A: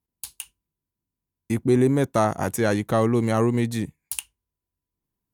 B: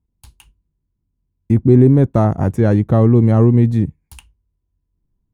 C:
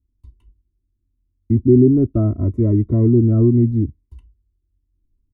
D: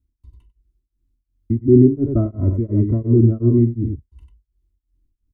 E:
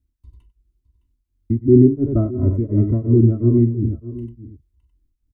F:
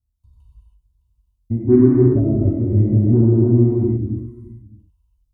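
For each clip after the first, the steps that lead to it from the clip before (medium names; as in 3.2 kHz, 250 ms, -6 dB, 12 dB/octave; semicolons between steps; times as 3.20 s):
tilt EQ -4.5 dB/octave
boxcar filter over 54 samples; comb 3 ms, depth 93%; Shepard-style phaser falling 0.8 Hz; trim -1.5 dB
on a send: multi-tap echo 43/95/97 ms -13/-7.5/-17.5 dB; on the sum: tremolo of two beating tones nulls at 2.8 Hz; trim +1 dB
delay 612 ms -16 dB
touch-sensitive phaser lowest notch 310 Hz, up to 1.2 kHz, full sweep at -16 dBFS; Chebyshev shaper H 7 -36 dB, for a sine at -1.5 dBFS; gated-style reverb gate 350 ms flat, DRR -6 dB; trim -4 dB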